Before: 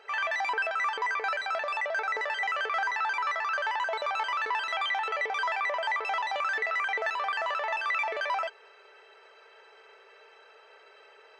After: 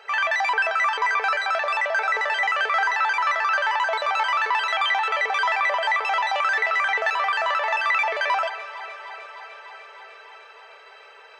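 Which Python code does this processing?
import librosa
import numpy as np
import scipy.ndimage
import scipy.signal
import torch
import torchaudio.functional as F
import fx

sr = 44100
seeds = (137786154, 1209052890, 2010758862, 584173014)

p1 = scipy.signal.sosfilt(scipy.signal.butter(2, 530.0, 'highpass', fs=sr, output='sos'), x)
p2 = p1 + fx.echo_alternate(p1, sr, ms=151, hz=1500.0, feedback_pct=87, wet_db=-14.0, dry=0)
y = F.gain(torch.from_numpy(p2), 7.5).numpy()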